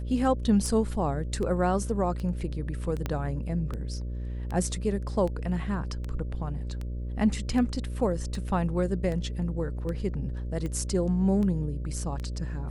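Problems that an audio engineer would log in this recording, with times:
buzz 60 Hz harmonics 10 -33 dBFS
tick 78 rpm -23 dBFS
3.06 pop -16 dBFS

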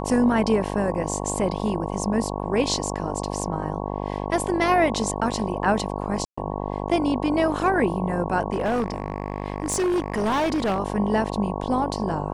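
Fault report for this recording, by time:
buzz 50 Hz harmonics 22 -29 dBFS
1.59 gap 3.2 ms
6.25–6.38 gap 0.125 s
8.52–10.8 clipped -19.5 dBFS

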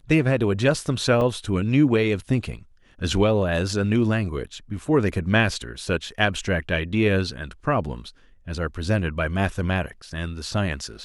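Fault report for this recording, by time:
1.21 gap 2.8 ms

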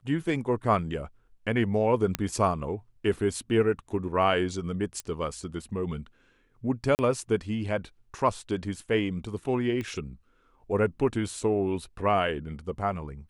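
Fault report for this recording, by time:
2.15 pop -10 dBFS
5 pop -19 dBFS
6.95–6.99 gap 39 ms
9.81 pop -22 dBFS

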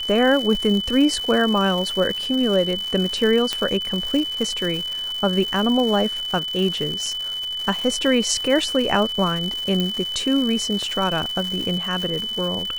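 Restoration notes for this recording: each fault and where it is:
crackle 270/s -26 dBFS
tone 3000 Hz -25 dBFS
3.53 pop -8 dBFS
7.06 gap 3.1 ms
9.8 pop -10 dBFS

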